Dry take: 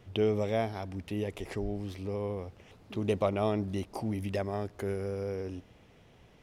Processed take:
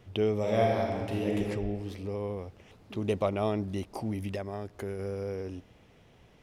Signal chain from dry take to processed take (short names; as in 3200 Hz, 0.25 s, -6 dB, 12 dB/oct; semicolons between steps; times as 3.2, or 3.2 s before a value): 0.39–1.37 reverb throw, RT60 1.9 s, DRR -3 dB; 4.32–4.99 compressor 2:1, threshold -34 dBFS, peak gain reduction 4 dB